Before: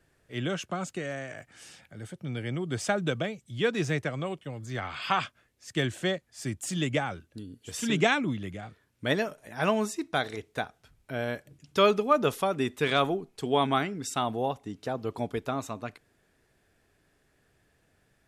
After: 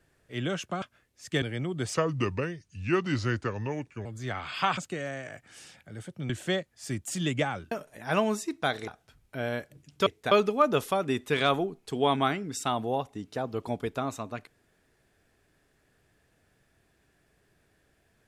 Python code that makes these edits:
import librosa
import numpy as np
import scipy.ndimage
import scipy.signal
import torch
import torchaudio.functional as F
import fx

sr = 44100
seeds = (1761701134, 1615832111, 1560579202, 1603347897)

y = fx.edit(x, sr, fx.swap(start_s=0.82, length_s=1.52, other_s=5.25, other_length_s=0.6),
    fx.speed_span(start_s=2.86, length_s=1.67, speed=0.79),
    fx.cut(start_s=7.27, length_s=1.95),
    fx.move(start_s=10.38, length_s=0.25, to_s=11.82), tone=tone)